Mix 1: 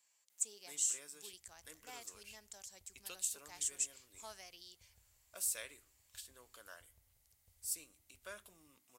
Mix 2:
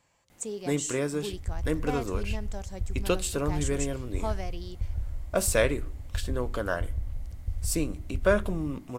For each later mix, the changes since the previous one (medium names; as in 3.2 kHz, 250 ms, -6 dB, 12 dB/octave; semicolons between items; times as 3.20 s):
first sound +8.5 dB; master: remove differentiator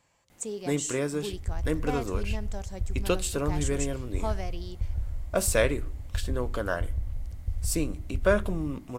reverb: on, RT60 2.5 s